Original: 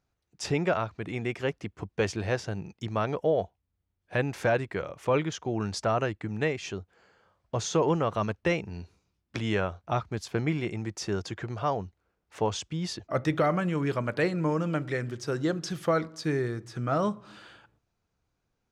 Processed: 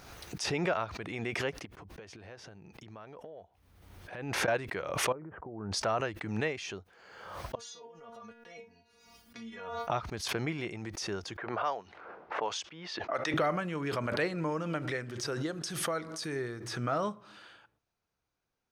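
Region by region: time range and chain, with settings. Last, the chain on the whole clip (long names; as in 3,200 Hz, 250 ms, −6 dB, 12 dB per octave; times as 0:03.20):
0:01.65–0:04.48: downward compressor 16 to 1, threshold −38 dBFS + high-shelf EQ 3,400 Hz −7 dB
0:05.12–0:05.72: downward compressor 12 to 1, threshold −32 dBFS + Gaussian smoothing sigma 7.3 samples
0:07.55–0:09.90: dynamic equaliser 2,800 Hz, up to −5 dB, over −51 dBFS, Q 7.4 + compressor whose output falls as the input rises −31 dBFS + stiff-string resonator 230 Hz, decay 0.29 s, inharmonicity 0.002
0:11.37–0:13.34: meter weighting curve A + low-pass that shuts in the quiet parts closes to 720 Hz, open at −27.5 dBFS
0:15.46–0:16.36: parametric band 9,000 Hz +8 dB 0.78 octaves + downward compressor 1.5 to 1, threshold −31 dBFS
whole clip: low-shelf EQ 320 Hz −9 dB; notch filter 7,400 Hz, Q 8.4; background raised ahead of every attack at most 45 dB per second; level −2.5 dB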